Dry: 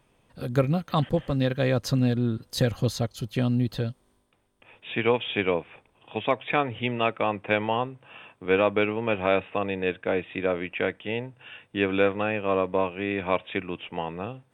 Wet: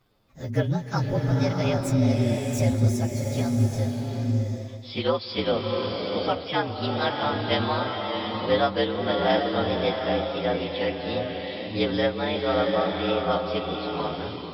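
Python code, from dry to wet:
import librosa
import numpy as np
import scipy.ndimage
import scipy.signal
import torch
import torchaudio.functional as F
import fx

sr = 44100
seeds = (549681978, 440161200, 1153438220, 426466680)

y = fx.partial_stretch(x, sr, pct=114)
y = fx.rev_bloom(y, sr, seeds[0], attack_ms=760, drr_db=1.5)
y = F.gain(torch.from_numpy(y), 1.0).numpy()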